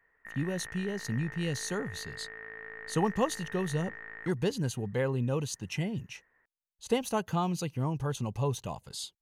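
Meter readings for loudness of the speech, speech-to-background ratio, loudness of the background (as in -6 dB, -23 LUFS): -33.0 LUFS, 11.0 dB, -44.0 LUFS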